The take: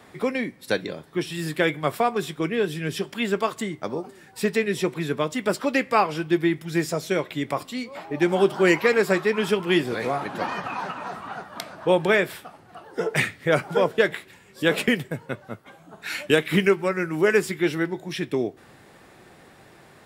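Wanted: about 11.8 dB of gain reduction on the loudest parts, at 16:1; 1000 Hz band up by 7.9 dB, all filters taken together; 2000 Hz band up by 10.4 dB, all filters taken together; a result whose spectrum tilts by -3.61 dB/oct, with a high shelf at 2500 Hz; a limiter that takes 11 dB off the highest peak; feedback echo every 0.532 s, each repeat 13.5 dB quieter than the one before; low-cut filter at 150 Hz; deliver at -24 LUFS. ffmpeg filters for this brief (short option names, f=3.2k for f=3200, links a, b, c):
-af "highpass=150,equalizer=f=1k:t=o:g=7,equalizer=f=2k:t=o:g=8.5,highshelf=f=2.5k:g=4.5,acompressor=threshold=-19dB:ratio=16,alimiter=limit=-15dB:level=0:latency=1,aecho=1:1:532|1064:0.211|0.0444,volume=3dB"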